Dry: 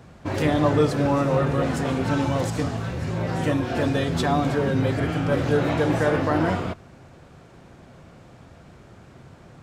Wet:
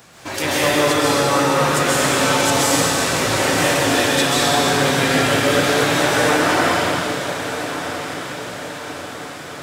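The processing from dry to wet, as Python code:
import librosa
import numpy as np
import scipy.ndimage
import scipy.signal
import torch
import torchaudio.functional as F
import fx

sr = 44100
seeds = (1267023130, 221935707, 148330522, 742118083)

y = fx.tilt_eq(x, sr, slope=4.0)
y = fx.rider(y, sr, range_db=4, speed_s=0.5)
y = fx.echo_diffused(y, sr, ms=1324, feedback_pct=53, wet_db=-10.0)
y = fx.rev_plate(y, sr, seeds[0], rt60_s=2.7, hf_ratio=0.95, predelay_ms=120, drr_db=-7.5)
y = F.gain(torch.from_numpy(y), 1.5).numpy()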